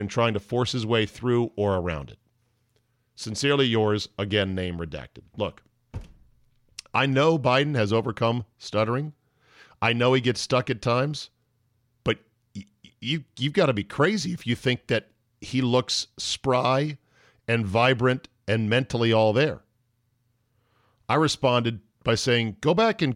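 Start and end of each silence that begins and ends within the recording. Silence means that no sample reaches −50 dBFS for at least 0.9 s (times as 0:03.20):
0:19.61–0:21.09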